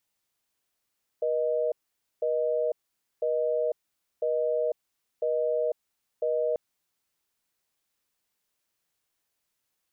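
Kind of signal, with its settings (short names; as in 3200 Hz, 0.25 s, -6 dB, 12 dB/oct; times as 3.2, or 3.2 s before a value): call progress tone busy tone, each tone -26.5 dBFS 5.34 s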